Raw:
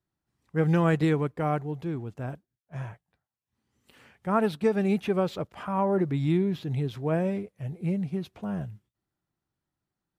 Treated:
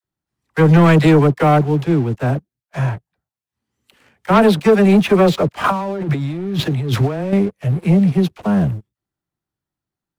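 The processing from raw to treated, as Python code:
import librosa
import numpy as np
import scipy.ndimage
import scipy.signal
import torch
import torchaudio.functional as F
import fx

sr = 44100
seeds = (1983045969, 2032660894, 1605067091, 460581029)

y = fx.leveller(x, sr, passes=1)
y = fx.dispersion(y, sr, late='lows', ms=43.0, hz=580.0)
y = fx.over_compress(y, sr, threshold_db=-33.0, ratio=-1.0, at=(5.64, 7.33))
y = fx.leveller(y, sr, passes=2)
y = y * librosa.db_to_amplitude(5.5)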